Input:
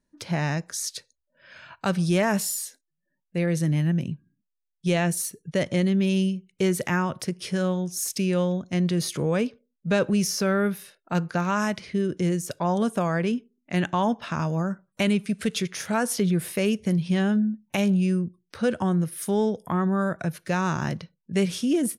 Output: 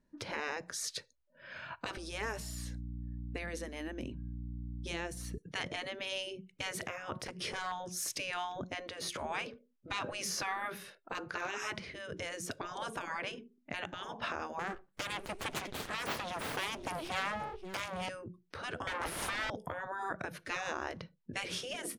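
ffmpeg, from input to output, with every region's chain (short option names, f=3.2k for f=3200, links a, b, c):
-filter_complex "[0:a]asettb=1/sr,asplit=3[a][b][c];[a]atrim=end=1.974[d];[b]atrim=start=1.97:end=5.38,asetpts=PTS-STARTPTS,afade=t=in:d=0.004:c=qsin,afade=t=out:st=3.406:d=0.004:c=qsin,aeval=exprs='val(0)+0.00794*(sin(2*PI*60*n/s)+sin(2*PI*2*60*n/s)/2+sin(2*PI*3*60*n/s)/3+sin(2*PI*4*60*n/s)/4+sin(2*PI*5*60*n/s)/5)':c=same,acrossover=split=110|4200[e][f][g];[e]acompressor=threshold=-42dB:ratio=4[h];[f]acompressor=threshold=-30dB:ratio=4[i];[g]acompressor=threshold=-39dB:ratio=4[j];[h][i][j]amix=inputs=3:normalize=0[k];[c]atrim=start=5.376[l];[d][k]acrossfade=d=0.004:c1=hsin:c2=qsin[m];[m][l]acrossfade=d=0.004:c1=qsin:c2=hsin,asettb=1/sr,asplit=3[n][o][p];[n]atrim=end=7.264[q];[o]atrim=start=7.26:end=7.72,asetpts=PTS-STARTPTS,afade=t=in:d=0.004:c=qsin,afade=t=out:st=0.456:d=0.004:c=qsin,volume=20.5dB,asoftclip=hard,volume=-20.5dB,acompressor=mode=upward:threshold=-28dB:ratio=2.5:attack=3.2:release=140:knee=2.83:detection=peak[r];[p]atrim=start=7.716[s];[q][r]acrossfade=d=0.004:c1=hsin:c2=qsin[t];[t][s]acrossfade=d=0.004:c1=qsin:c2=hsin,asettb=1/sr,asplit=3[u][v][w];[u]atrim=end=14.594[x];[v]atrim=start=14.59:end=18.09,asetpts=PTS-STARTPTS,afade=t=in:d=0.004:c=qsin,afade=t=out:st=3.496:d=0.004:c=qsin,highshelf=f=6.4k:g=8,aecho=1:1:530:0.106,atrim=end_sample=154350,aeval=exprs='abs(val(0))':c=same[y];[w]atrim=start=18.086[z];[x][y]acrossfade=d=0.004:c1=hsin:c2=qsin[aa];[aa][z]acrossfade=d=0.004:c1=qsin:c2=hsin,asettb=1/sr,asplit=3[ab][ac][ad];[ab]atrim=end=18.874[ae];[ac]atrim=start=18.87:end=19.5,asetpts=PTS-STARTPTS,afade=t=in:d=0.004:c=qsin,afade=t=out:st=0.626:d=0.004:c=qsin,highshelf=f=6.3k:g=12,asplit=2[af][ag];[ag]highpass=f=720:p=1,volume=32dB,asoftclip=type=tanh:threshold=-13.5dB[ah];[af][ah]amix=inputs=2:normalize=0,lowpass=f=1.7k:p=1,volume=-6dB[ai];[ad]atrim=start=19.496[aj];[ae][ai]acrossfade=d=0.004:c1=hsin:c2=qsin[ak];[ak][aj]acrossfade=d=0.004:c1=qsin:c2=hsin,afftfilt=real='re*lt(hypot(re,im),0.112)':imag='im*lt(hypot(re,im),0.112)':win_size=1024:overlap=0.75,lowpass=f=2.4k:p=1,alimiter=level_in=3dB:limit=-24dB:level=0:latency=1:release=390,volume=-3dB,volume=2.5dB"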